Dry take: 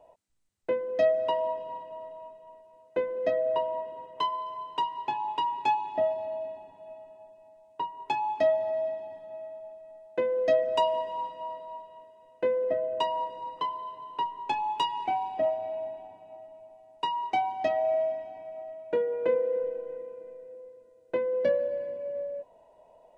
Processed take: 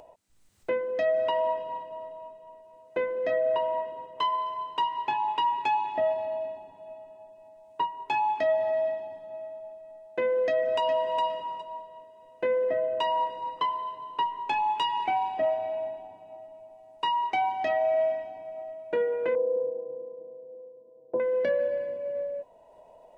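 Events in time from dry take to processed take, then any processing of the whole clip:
0:10.40–0:11.20: delay throw 410 ms, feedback 15%, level −8.5 dB
0:19.35–0:21.20: elliptic band-pass filter 120–880 Hz
whole clip: dynamic equaliser 1,900 Hz, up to +8 dB, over −46 dBFS, Q 0.86; brickwall limiter −20.5 dBFS; upward compression, threshold −49 dBFS; level +1.5 dB

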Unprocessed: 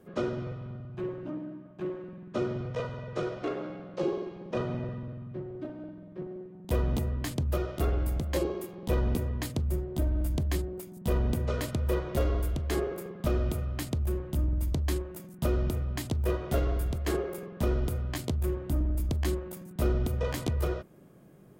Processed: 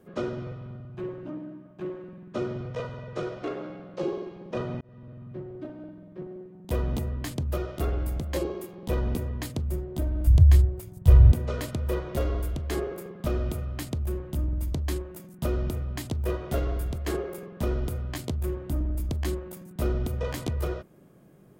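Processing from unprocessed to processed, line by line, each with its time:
0:04.81–0:05.32: fade in
0:10.27–0:11.32: low shelf with overshoot 150 Hz +11.5 dB, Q 3

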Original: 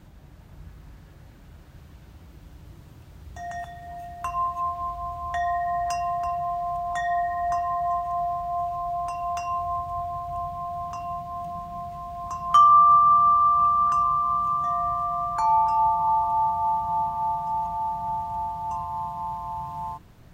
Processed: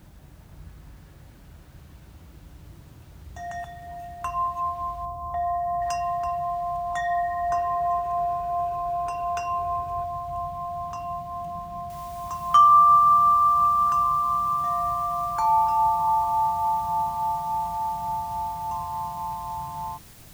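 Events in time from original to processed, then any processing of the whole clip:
0:05.05–0:05.82: Savitzky-Golay smoothing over 65 samples
0:07.52–0:10.04: hollow resonant body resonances 420/1,500/2,500 Hz, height 11 dB, ringing for 25 ms
0:11.90: noise floor change −66 dB −51 dB

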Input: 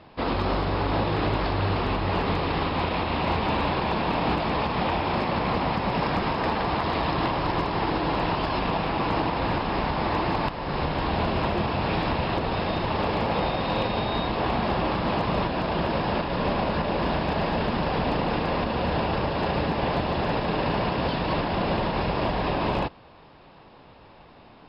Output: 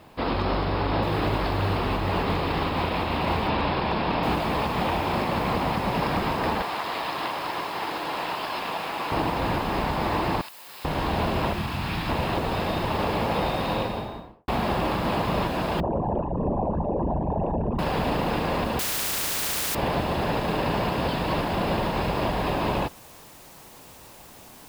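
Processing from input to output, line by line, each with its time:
0:01.02–0:03.48: noise that follows the level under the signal 30 dB
0:04.23: noise floor change −67 dB −50 dB
0:06.62–0:09.12: high-pass filter 860 Hz 6 dB per octave
0:10.41–0:10.85: first difference
0:11.53–0:12.09: parametric band 510 Hz −12 dB 1.4 octaves
0:13.63–0:14.48: fade out and dull
0:15.80–0:17.79: spectral envelope exaggerated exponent 3
0:18.79–0:19.75: every bin compressed towards the loudest bin 10 to 1

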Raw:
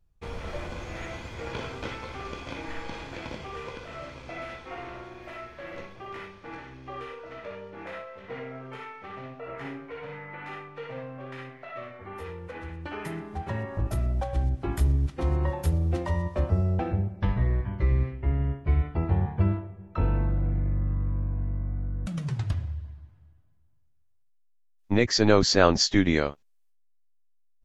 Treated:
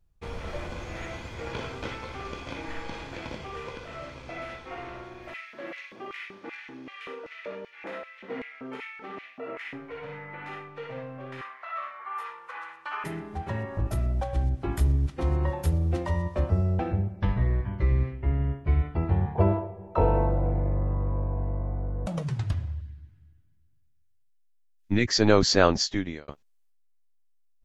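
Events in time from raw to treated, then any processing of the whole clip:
0:05.34–0:09.73: auto-filter high-pass square 2.6 Hz 250–2,200 Hz
0:11.41–0:13.04: high-pass with resonance 1,100 Hz, resonance Q 3.6
0:19.35–0:22.23: flat-topped bell 630 Hz +13 dB
0:22.81–0:25.08: flat-topped bell 720 Hz −11 dB
0:25.59–0:26.28: fade out

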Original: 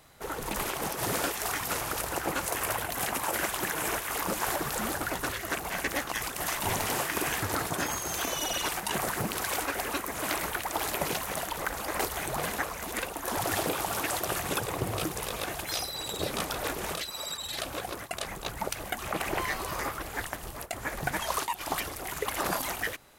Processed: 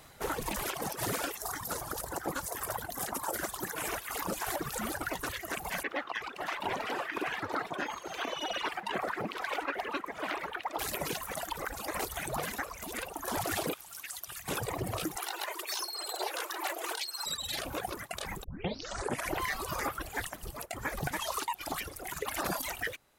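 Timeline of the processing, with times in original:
0:01.37–0:03.76: parametric band 2,500 Hz −11 dB
0:05.83–0:10.79: three-way crossover with the lows and the highs turned down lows −15 dB, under 220 Hz, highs −22 dB, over 3,800 Hz
0:13.74–0:14.48: guitar amp tone stack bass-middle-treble 5-5-5
0:15.16–0:17.26: frequency shifter +290 Hz
0:18.44: tape start 0.92 s
whole clip: speech leveller 2 s; reverb reduction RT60 1.6 s; brickwall limiter −22.5 dBFS

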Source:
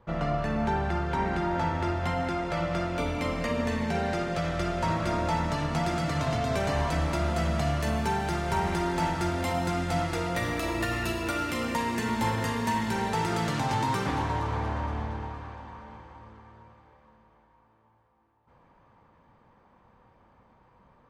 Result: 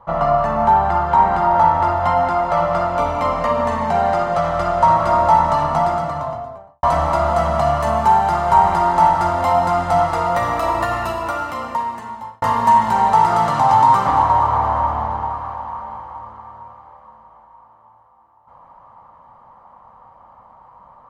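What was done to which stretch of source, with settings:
0:05.57–0:06.83: fade out and dull
0:10.81–0:12.42: fade out
whole clip: flat-topped bell 860 Hz +14.5 dB; comb filter 1 ms, depth 37%; level +1.5 dB

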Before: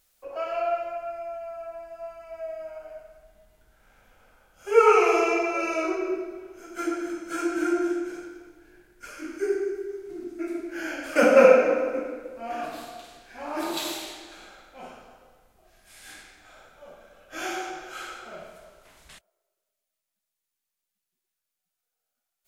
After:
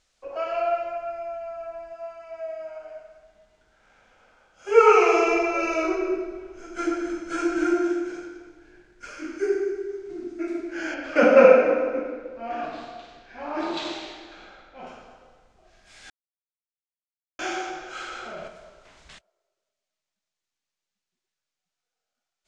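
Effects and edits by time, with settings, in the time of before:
0:01.93–0:04.69: low-shelf EQ 150 Hz −10.5 dB
0:05.27–0:07.74: low-shelf EQ 76 Hz +12 dB
0:10.94–0:14.87: high-frequency loss of the air 130 metres
0:16.10–0:17.39: silence
0:18.07–0:18.48: envelope flattener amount 70%
whole clip: low-pass filter 7,000 Hz 24 dB per octave; level +2 dB

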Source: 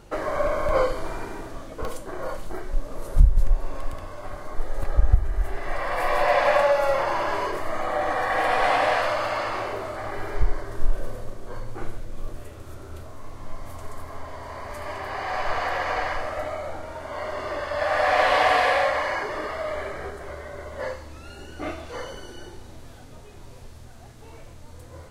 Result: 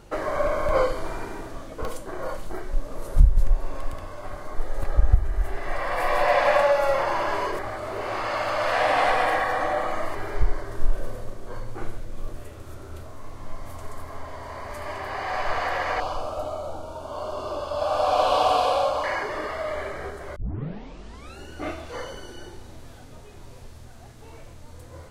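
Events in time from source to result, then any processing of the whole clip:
0:07.59–0:10.15: reverse
0:16.00–0:19.04: Butterworth band-reject 1,900 Hz, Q 1.3
0:20.36: tape start 1.02 s

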